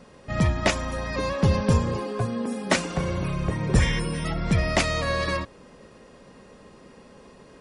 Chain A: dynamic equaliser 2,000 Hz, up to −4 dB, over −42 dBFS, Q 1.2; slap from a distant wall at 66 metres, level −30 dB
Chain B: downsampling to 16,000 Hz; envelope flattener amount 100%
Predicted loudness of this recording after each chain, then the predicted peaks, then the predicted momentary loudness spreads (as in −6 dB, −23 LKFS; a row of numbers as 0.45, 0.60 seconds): −26.0, −15.5 LKFS; −7.0, −2.5 dBFS; 7, 1 LU